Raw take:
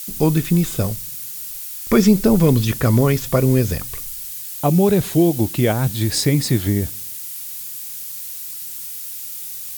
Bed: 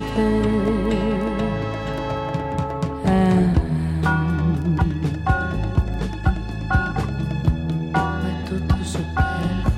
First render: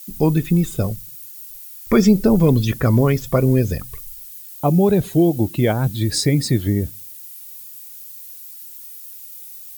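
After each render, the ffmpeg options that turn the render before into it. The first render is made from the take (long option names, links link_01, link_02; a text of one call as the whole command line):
ffmpeg -i in.wav -af "afftdn=noise_reduction=11:noise_floor=-31" out.wav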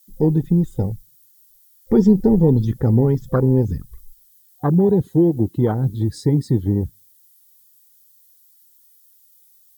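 ffmpeg -i in.wav -af "afwtdn=0.112,superequalizer=8b=0.398:12b=0.316" out.wav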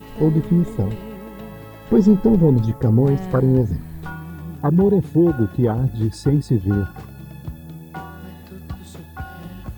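ffmpeg -i in.wav -i bed.wav -filter_complex "[1:a]volume=-13dB[link_01];[0:a][link_01]amix=inputs=2:normalize=0" out.wav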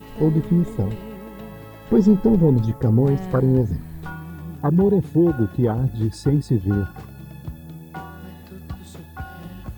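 ffmpeg -i in.wav -af "volume=-1.5dB" out.wav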